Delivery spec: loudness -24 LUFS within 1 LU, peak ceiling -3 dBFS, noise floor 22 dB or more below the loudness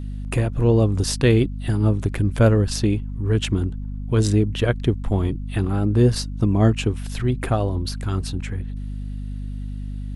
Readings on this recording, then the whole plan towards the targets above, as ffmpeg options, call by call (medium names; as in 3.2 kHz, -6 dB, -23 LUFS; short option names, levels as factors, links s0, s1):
hum 50 Hz; highest harmonic 250 Hz; hum level -27 dBFS; loudness -21.5 LUFS; peak level -5.0 dBFS; loudness target -24.0 LUFS
-> -af "bandreject=f=50:t=h:w=4,bandreject=f=100:t=h:w=4,bandreject=f=150:t=h:w=4,bandreject=f=200:t=h:w=4,bandreject=f=250:t=h:w=4"
-af "volume=0.75"